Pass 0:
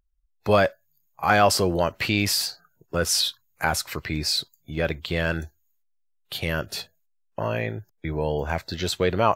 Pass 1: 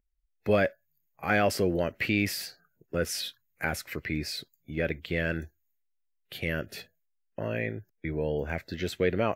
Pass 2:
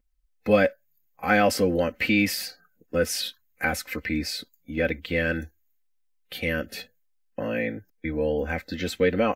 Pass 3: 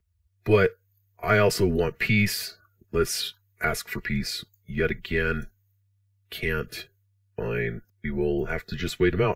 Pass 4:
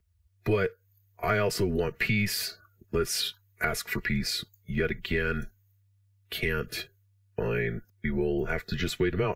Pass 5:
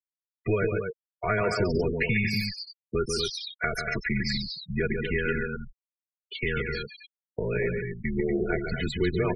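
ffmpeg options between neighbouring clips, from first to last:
-af "equalizer=f=250:t=o:w=1:g=5,equalizer=f=500:t=o:w=1:g=4,equalizer=f=1k:t=o:w=1:g=-11,equalizer=f=2k:t=o:w=1:g=9,equalizer=f=4k:t=o:w=1:g=-6,equalizer=f=8k:t=o:w=1:g=-5,volume=-6.5dB"
-af "aecho=1:1:3.9:0.8,volume=2.5dB"
-af "afreqshift=-99"
-af "acompressor=threshold=-27dB:ratio=3,volume=2dB"
-af "aecho=1:1:142.9|239.1:0.562|0.501,afftfilt=real='re*gte(hypot(re,im),0.0447)':imag='im*gte(hypot(re,im),0.0447)':win_size=1024:overlap=0.75"

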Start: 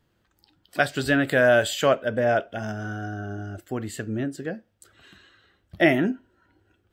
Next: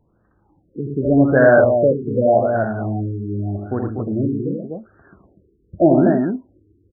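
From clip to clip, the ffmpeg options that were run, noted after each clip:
-af "highshelf=f=2.5k:t=q:w=3:g=8,aecho=1:1:78.72|113.7|244.9:0.562|0.355|0.562,afftfilt=real='re*lt(b*sr/1024,460*pow(1900/460,0.5+0.5*sin(2*PI*0.85*pts/sr)))':imag='im*lt(b*sr/1024,460*pow(1900/460,0.5+0.5*sin(2*PI*0.85*pts/sr)))':win_size=1024:overlap=0.75,volume=6.5dB"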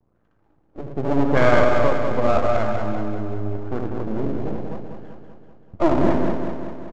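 -af "aresample=16000,aeval=exprs='max(val(0),0)':c=same,aresample=44100,aecho=1:1:193|386|579|772|965|1158|1351|1544:0.501|0.296|0.174|0.103|0.0607|0.0358|0.0211|0.0125,volume=-1dB"

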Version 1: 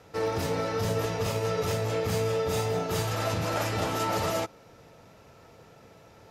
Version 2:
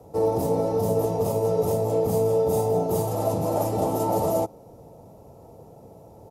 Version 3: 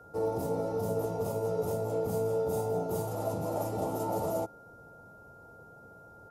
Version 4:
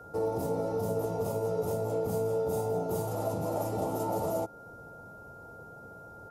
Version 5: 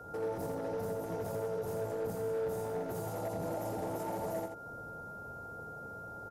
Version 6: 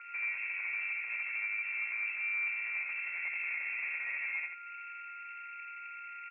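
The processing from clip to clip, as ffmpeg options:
-filter_complex "[0:a]firequalizer=gain_entry='entry(840,0);entry(1500,-25);entry(9800,-1)':delay=0.05:min_phase=1,acrossover=split=140|7400[a][b][c];[a]acompressor=threshold=-44dB:ratio=6[d];[d][b][c]amix=inputs=3:normalize=0,volume=7dB"
-af "aeval=exprs='val(0)+0.00631*sin(2*PI*1400*n/s)':c=same,volume=-8.5dB"
-af "acompressor=threshold=-39dB:ratio=1.5,volume=4.5dB"
-af "alimiter=level_in=5dB:limit=-24dB:level=0:latency=1:release=181,volume=-5dB,asoftclip=type=hard:threshold=-33.5dB,aecho=1:1:85:0.501"
-af "lowpass=f=2.4k:t=q:w=0.5098,lowpass=f=2.4k:t=q:w=0.6013,lowpass=f=2.4k:t=q:w=0.9,lowpass=f=2.4k:t=q:w=2.563,afreqshift=-2800" -ar 48000 -c:a libopus -b:a 48k

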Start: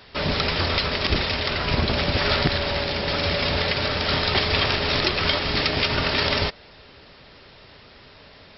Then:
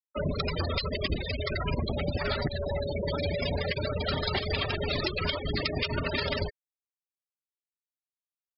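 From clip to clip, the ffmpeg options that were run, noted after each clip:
-af "afftfilt=real='re*gte(hypot(re,im),0.141)':imag='im*gte(hypot(re,im),0.141)':win_size=1024:overlap=0.75,acompressor=threshold=-26dB:ratio=6"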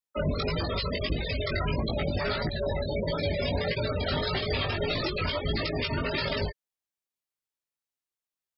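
-af "alimiter=limit=-21.5dB:level=0:latency=1:release=30,flanger=delay=18:depth=2.5:speed=1.6,volume=5.5dB"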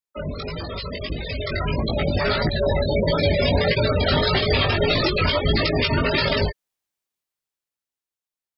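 -af "dynaudnorm=f=280:g=13:m=11dB,volume=-1.5dB"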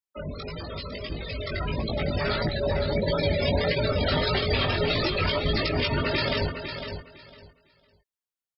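-af "aecho=1:1:505|1010|1515:0.376|0.0752|0.015,volume=-5.5dB"

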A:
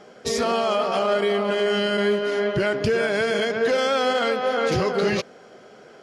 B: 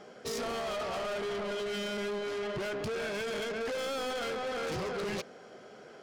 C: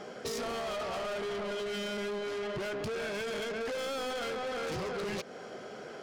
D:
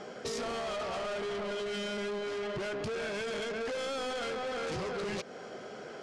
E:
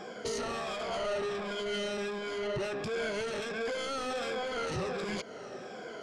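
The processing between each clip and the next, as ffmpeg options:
-af "asoftclip=type=tanh:threshold=-29dB,volume=-4dB"
-af "acompressor=threshold=-42dB:ratio=6,volume=6.5dB"
-af "lowpass=f=9.7k:w=0.5412,lowpass=f=9.7k:w=1.3066"
-af "afftfilt=real='re*pow(10,10/40*sin(2*PI*(1.8*log(max(b,1)*sr/1024/100)/log(2)-(-1.4)*(pts-256)/sr)))':imag='im*pow(10,10/40*sin(2*PI*(1.8*log(max(b,1)*sr/1024/100)/log(2)-(-1.4)*(pts-256)/sr)))':win_size=1024:overlap=0.75"

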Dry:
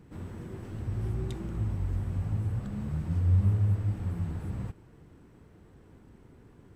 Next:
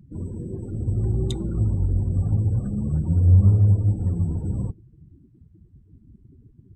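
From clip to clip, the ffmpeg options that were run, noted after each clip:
-af "highshelf=f=3k:g=11.5,afftdn=nr=36:nf=-42,volume=9dB"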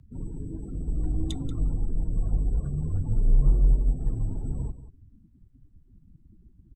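-af "afreqshift=-60,aecho=1:1:184:0.188,volume=-3dB"

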